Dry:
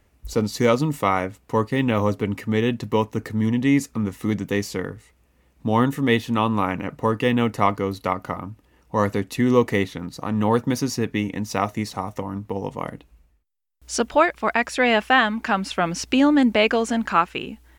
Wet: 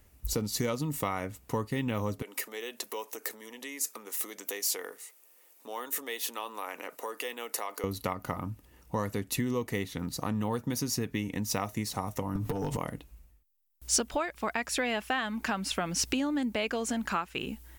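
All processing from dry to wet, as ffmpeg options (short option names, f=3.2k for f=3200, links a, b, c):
-filter_complex "[0:a]asettb=1/sr,asplit=3[a][b][c];[a]atrim=end=2.224[d];[b]atrim=start=2.22:end=7.84,asetpts=PTS-STARTPTS,afade=t=in:d=0.004:c=qsin,afade=t=out:st=5.616:d=0.004:c=qsin,highshelf=f=5.7k:g=8.5,acompressor=threshold=-28dB:ratio=6:attack=3.2:release=140:knee=1:detection=peak,highpass=f=400:w=0.5412,highpass=f=400:w=1.3066[e];[c]atrim=start=7.836[f];[d][e]acrossfade=d=0.004:c1=hsin:c2=qsin[g];[g][f]acrossfade=d=0.004:c1=qsin:c2=hsin,asettb=1/sr,asplit=3[h][i][j];[h]atrim=end=12.354[k];[i]atrim=start=12.35:end=12.77,asetpts=PTS-STARTPTS,afade=t=in:d=0.004:c=qsin,afade=t=out:st=0.416:d=0.004:c=qsin,acompressor=threshold=-36dB:ratio=10:attack=3.2:release=140:knee=1:detection=peak,aecho=1:1:6.8:0.52,atrim=end_sample=18522,aeval=exprs='0.112*sin(PI/2*3.55*val(0)/0.112)':c=same[l];[j]atrim=start=12.766[m];[k][l]acrossfade=d=0.004:c1=hsin:c2=qsin[n];[n][m]acrossfade=d=0.004:c1=qsin:c2=hsin,lowshelf=f=130:g=5.5,acompressor=threshold=-25dB:ratio=6,aemphasis=mode=production:type=50kf,volume=-3.5dB"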